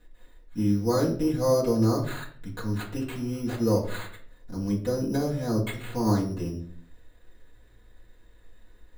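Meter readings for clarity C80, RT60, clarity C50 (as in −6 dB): 13.0 dB, 0.55 s, 9.0 dB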